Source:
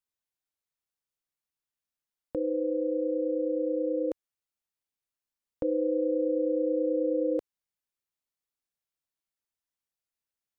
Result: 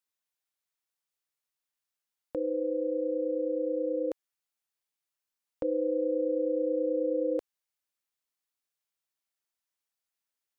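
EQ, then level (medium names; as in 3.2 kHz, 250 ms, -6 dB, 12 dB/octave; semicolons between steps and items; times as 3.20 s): bass shelf 370 Hz -9.5 dB; +2.5 dB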